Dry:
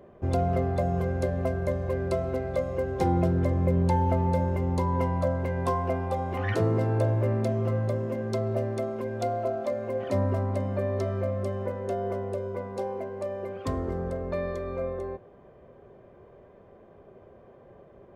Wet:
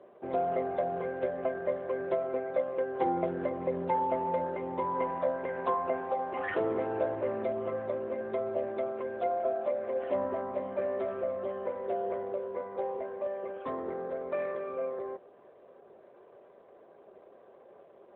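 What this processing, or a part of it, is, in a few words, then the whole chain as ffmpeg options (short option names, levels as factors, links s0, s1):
telephone: -af "highpass=390,lowpass=3400" -ar 8000 -c:a libopencore_amrnb -b:a 12200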